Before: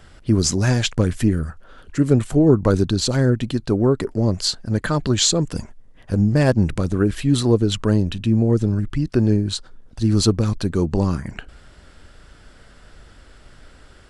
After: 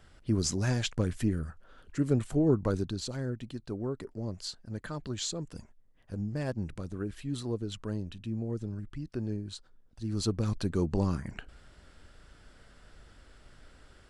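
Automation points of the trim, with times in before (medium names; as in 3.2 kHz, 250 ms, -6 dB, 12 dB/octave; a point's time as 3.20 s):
2.54 s -11 dB
3.18 s -17.5 dB
10.03 s -17.5 dB
10.53 s -9 dB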